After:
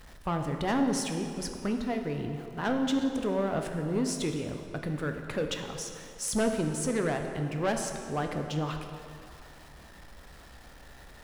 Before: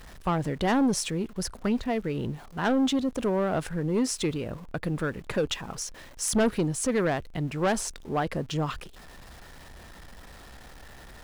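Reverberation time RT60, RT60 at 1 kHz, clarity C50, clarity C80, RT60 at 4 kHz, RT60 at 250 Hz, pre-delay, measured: 2.7 s, 2.7 s, 5.5 dB, 6.5 dB, 1.9 s, 2.6 s, 7 ms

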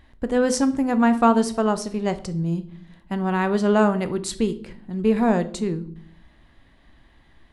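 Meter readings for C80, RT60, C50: 20.5 dB, 0.60 s, 15.5 dB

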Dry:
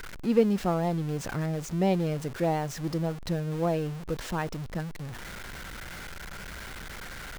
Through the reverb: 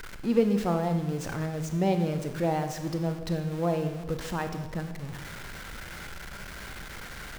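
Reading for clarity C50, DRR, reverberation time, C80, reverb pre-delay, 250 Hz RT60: 8.5 dB, 7.0 dB, 1.1 s, 10.5 dB, 26 ms, 1.4 s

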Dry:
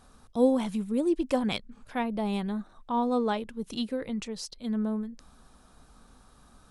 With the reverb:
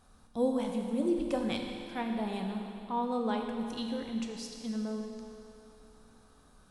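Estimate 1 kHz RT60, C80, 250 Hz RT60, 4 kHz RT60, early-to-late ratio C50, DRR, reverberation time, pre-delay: 2.9 s, 4.0 dB, 3.0 s, 2.9 s, 3.5 dB, 2.0 dB, 2.9 s, 11 ms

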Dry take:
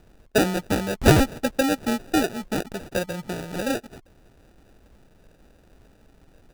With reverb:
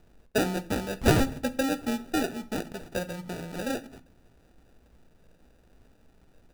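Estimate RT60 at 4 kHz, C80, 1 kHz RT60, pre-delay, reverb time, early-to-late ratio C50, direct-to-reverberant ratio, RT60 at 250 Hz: 0.35 s, 22.5 dB, 0.45 s, 4 ms, 0.45 s, 17.5 dB, 11.0 dB, 0.75 s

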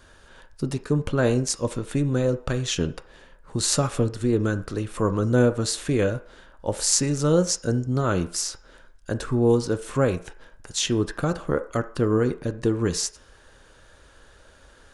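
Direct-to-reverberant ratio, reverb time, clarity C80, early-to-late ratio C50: 9.0 dB, 0.50 s, 19.0 dB, 15.0 dB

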